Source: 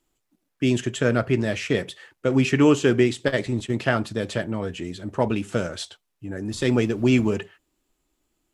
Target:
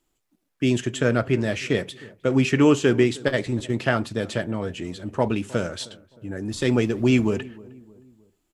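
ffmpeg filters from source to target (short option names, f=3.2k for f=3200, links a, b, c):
-filter_complex "[0:a]asplit=2[a][b];[b]adelay=310,lowpass=f=1.1k:p=1,volume=-21dB,asplit=2[c][d];[d]adelay=310,lowpass=f=1.1k:p=1,volume=0.48,asplit=2[e][f];[f]adelay=310,lowpass=f=1.1k:p=1,volume=0.48[g];[a][c][e][g]amix=inputs=4:normalize=0"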